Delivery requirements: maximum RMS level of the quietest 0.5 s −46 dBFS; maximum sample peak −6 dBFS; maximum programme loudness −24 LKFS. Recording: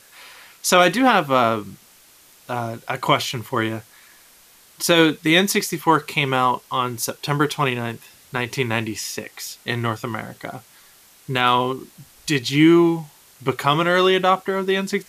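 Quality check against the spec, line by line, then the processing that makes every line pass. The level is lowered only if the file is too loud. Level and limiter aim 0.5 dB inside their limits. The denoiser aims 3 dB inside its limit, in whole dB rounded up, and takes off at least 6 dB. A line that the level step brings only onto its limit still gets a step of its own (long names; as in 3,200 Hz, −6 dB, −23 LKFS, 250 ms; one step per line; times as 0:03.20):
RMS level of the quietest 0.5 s −51 dBFS: in spec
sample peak −3.5 dBFS: out of spec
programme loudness −20.0 LKFS: out of spec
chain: level −4.5 dB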